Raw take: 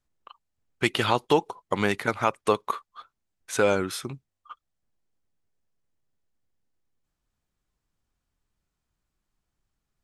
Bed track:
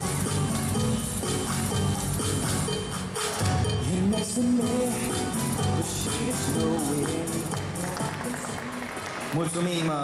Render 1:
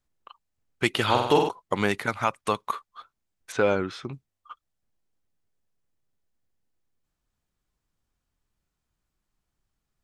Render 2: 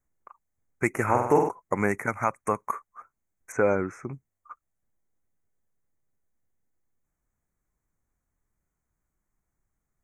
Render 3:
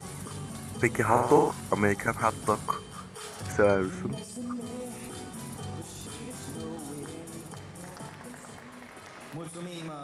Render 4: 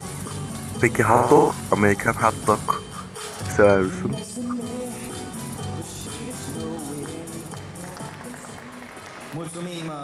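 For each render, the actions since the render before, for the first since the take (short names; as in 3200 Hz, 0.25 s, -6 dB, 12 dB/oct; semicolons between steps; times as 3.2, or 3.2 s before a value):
1.05–1.49 flutter echo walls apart 8.3 m, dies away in 0.75 s; 2.06–2.74 bell 400 Hz -7.5 dB 0.88 oct; 3.52–4.13 air absorption 160 m
elliptic band-stop 2200–6200 Hz, stop band 40 dB
add bed track -12.5 dB
gain +7.5 dB; limiter -3 dBFS, peak gain reduction 2.5 dB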